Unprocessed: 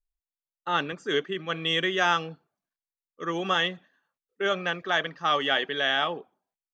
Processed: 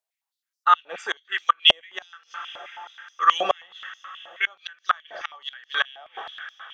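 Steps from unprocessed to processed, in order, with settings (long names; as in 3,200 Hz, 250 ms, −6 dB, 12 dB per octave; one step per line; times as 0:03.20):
coupled-rooms reverb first 0.29 s, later 4.7 s, from −21 dB, DRR 10 dB
gate with flip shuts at −15 dBFS, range −31 dB
high-pass on a step sequencer 9.4 Hz 640–5,300 Hz
level +5.5 dB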